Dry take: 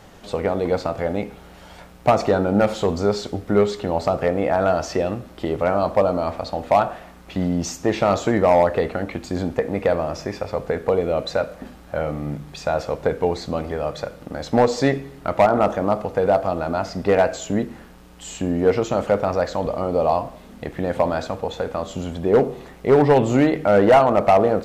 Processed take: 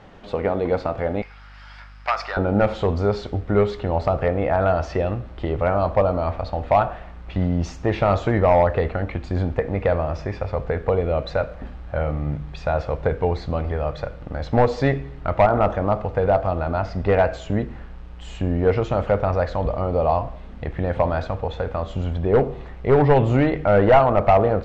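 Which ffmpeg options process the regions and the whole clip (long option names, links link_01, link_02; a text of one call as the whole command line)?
ffmpeg -i in.wav -filter_complex "[0:a]asettb=1/sr,asplit=3[link_01][link_02][link_03];[link_01]atrim=end=1.224[link_04];[link_02]atrim=start=1.22:end=2.37,asetpts=PTS-STARTPTS,afade=type=in:duration=0.004:curve=qsin,afade=type=out:start_time=1.146:duration=0.004:curve=qsin,highpass=frequency=1400:width_type=q:width=1.6,equalizer=frequency=5000:width_type=o:width=0.22:gain=14.5,aeval=exprs='val(0)+0.00316*(sin(2*PI*50*n/s)+sin(2*PI*2*50*n/s)/2+sin(2*PI*3*50*n/s)/3+sin(2*PI*4*50*n/s)/4+sin(2*PI*5*50*n/s)/5)':channel_layout=same[link_05];[link_03]atrim=start=2.366[link_06];[link_04][link_05]acrossfade=duration=0.004:curve1=hsin:curve2=qsin[link_07];[link_07][link_06]acrossfade=duration=0.004:curve1=qsin:curve2=hsin,lowpass=3100,asubboost=boost=5.5:cutoff=94" out.wav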